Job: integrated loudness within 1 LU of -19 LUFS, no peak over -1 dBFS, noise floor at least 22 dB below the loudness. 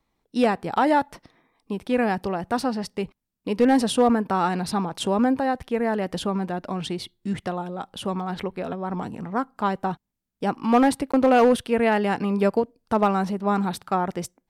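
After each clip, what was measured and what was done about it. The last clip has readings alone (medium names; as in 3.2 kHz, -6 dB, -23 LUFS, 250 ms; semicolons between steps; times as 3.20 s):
clipped samples 0.4%; clipping level -11.0 dBFS; dropouts 1; longest dropout 15 ms; loudness -24.0 LUFS; peak level -11.0 dBFS; loudness target -19.0 LUFS
-> clip repair -11 dBFS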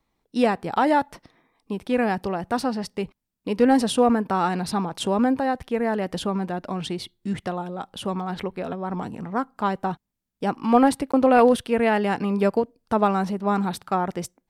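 clipped samples 0.0%; dropouts 1; longest dropout 15 ms
-> interpolate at 11.12 s, 15 ms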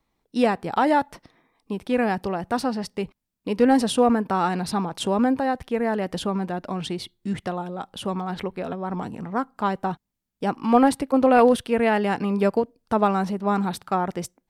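dropouts 0; loudness -23.5 LUFS; peak level -4.0 dBFS; loudness target -19.0 LUFS
-> trim +4.5 dB; peak limiter -1 dBFS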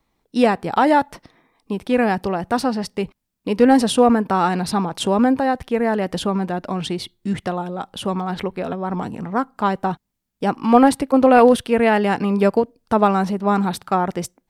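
loudness -19.0 LUFS; peak level -1.0 dBFS; noise floor -76 dBFS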